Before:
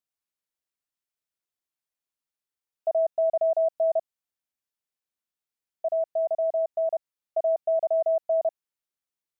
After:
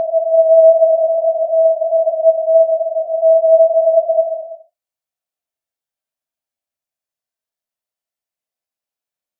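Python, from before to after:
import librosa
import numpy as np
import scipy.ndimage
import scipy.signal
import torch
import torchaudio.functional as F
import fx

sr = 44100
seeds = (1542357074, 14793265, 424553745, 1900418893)

y = fx.peak_eq(x, sr, hz=650.0, db=11.0, octaves=0.4)
y = fx.paulstretch(y, sr, seeds[0], factor=4.7, window_s=0.25, from_s=3.12)
y = F.gain(torch.from_numpy(y), 1.0).numpy()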